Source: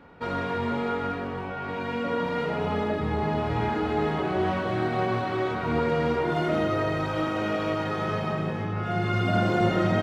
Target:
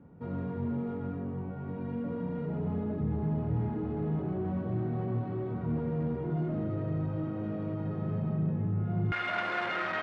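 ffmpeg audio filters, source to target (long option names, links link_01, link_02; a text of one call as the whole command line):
ffmpeg -i in.wav -af "asoftclip=type=tanh:threshold=-24.5dB,asetnsamples=nb_out_samples=441:pad=0,asendcmd='9.12 bandpass f 1700',bandpass=frequency=140:width_type=q:width=1.3:csg=0,volume=4.5dB" out.wav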